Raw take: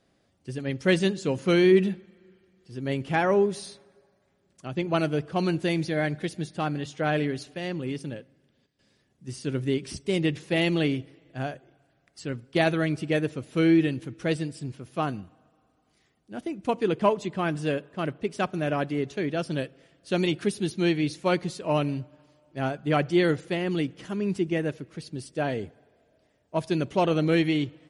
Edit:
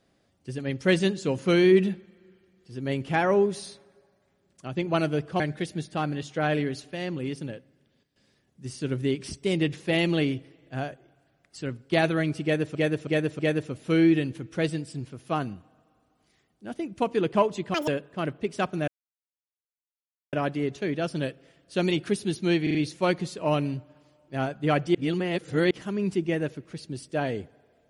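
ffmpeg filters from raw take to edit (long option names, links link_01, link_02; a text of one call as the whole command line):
ffmpeg -i in.wav -filter_complex "[0:a]asplit=13[link_01][link_02][link_03][link_04][link_05][link_06][link_07][link_08][link_09][link_10][link_11][link_12][link_13];[link_01]atrim=end=5.402[link_14];[link_02]atrim=start=6.028:end=13.382[link_15];[link_03]atrim=start=13.058:end=13.382[link_16];[link_04]atrim=start=13.058:end=13.382[link_17];[link_05]atrim=start=13.058:end=17.414[link_18];[link_06]atrim=start=17.41:end=17.68,asetpts=PTS-STARTPTS,asetrate=86877,aresample=44100,atrim=end_sample=6044,asetpts=PTS-STARTPTS[link_19];[link_07]atrim=start=17.676:end=18.68,asetpts=PTS-STARTPTS,afade=type=out:start_time=1:duration=0.004:curve=hsin,apad=pad_dur=1.45[link_20];[link_08]atrim=start=18.68:end=21.022,asetpts=PTS-STARTPTS,afade=type=in:duration=0.004:curve=hsin[link_21];[link_09]atrim=start=20.978:end=21.022[link_22];[link_10]atrim=start=20.978:end=21.022[link_23];[link_11]atrim=start=20.978:end=23.182[link_24];[link_12]atrim=start=23.178:end=23.942,asetpts=PTS-STARTPTS,areverse[link_25];[link_13]atrim=start=23.938[link_26];[link_14][link_15]acrossfade=duration=0.004:curve1=hsin:curve2=hsin[link_27];[link_27][link_16]acrossfade=duration=0.004:curve1=hsin:curve2=hsin[link_28];[link_28][link_17]acrossfade=duration=0.004:curve1=hsin:curve2=hsin[link_29];[link_29][link_18]acrossfade=duration=0.004:curve1=hsin:curve2=hsin[link_30];[link_30][link_19]acrossfade=duration=0.004:curve1=hsin:curve2=hsin[link_31];[link_20][link_21]concat=n=2:v=0:a=1[link_32];[link_31][link_32]acrossfade=duration=0.004:curve1=hsin:curve2=hsin[link_33];[link_33][link_22]acrossfade=duration=0.004:curve1=hsin:curve2=hsin[link_34];[link_34][link_23]acrossfade=duration=0.004:curve1=hsin:curve2=hsin[link_35];[link_35][link_24]acrossfade=duration=0.004:curve1=hsin:curve2=hsin[link_36];[link_36][link_25]acrossfade=duration=0.004:curve1=hsin:curve2=hsin[link_37];[link_37][link_26]acrossfade=duration=0.004:curve1=hsin:curve2=hsin" out.wav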